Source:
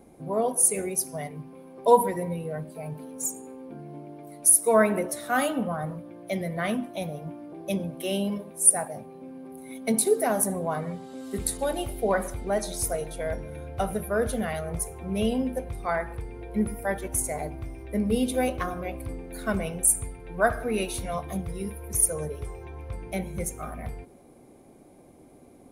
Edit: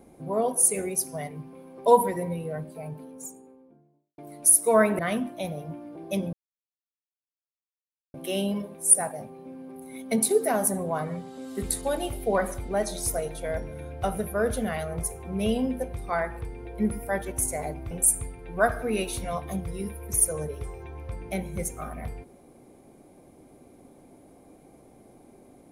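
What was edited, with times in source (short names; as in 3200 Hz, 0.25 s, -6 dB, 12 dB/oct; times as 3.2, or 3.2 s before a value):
2.46–4.18 studio fade out
4.99–6.56 cut
7.9 insert silence 1.81 s
17.67–19.72 cut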